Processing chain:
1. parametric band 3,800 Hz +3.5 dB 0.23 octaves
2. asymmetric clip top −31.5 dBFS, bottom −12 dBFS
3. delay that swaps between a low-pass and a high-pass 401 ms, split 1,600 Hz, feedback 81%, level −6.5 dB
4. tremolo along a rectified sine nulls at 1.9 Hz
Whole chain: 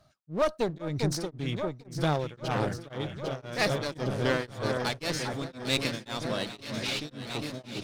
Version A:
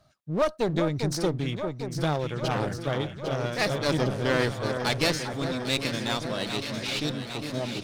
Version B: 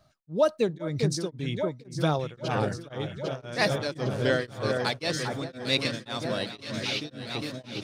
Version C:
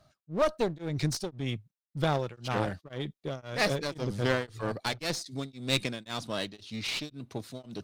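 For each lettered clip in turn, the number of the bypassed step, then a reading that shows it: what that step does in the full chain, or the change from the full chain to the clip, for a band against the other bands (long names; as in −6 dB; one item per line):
4, change in integrated loudness +3.5 LU
2, distortion level −9 dB
3, change in momentary loudness spread +3 LU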